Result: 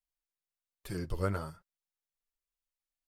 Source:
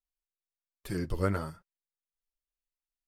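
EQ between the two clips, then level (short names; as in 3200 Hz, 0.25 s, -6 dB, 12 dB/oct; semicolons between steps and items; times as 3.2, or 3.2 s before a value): bell 260 Hz -4.5 dB 1 oct; dynamic EQ 1900 Hz, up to -5 dB, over -56 dBFS, Q 3.6; -2.0 dB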